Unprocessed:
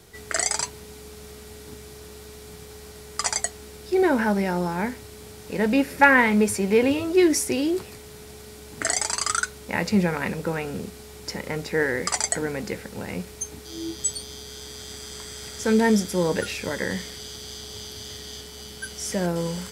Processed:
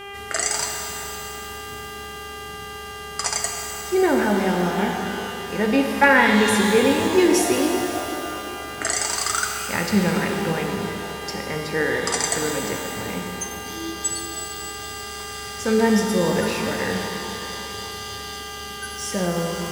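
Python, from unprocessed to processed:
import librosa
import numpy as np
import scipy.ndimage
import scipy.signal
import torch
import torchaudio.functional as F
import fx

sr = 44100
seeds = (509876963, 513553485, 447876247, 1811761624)

y = fx.dmg_buzz(x, sr, base_hz=400.0, harmonics=8, level_db=-38.0, tilt_db=-2, odd_only=False)
y = fx.rev_shimmer(y, sr, seeds[0], rt60_s=3.2, semitones=12, shimmer_db=-8, drr_db=2.0)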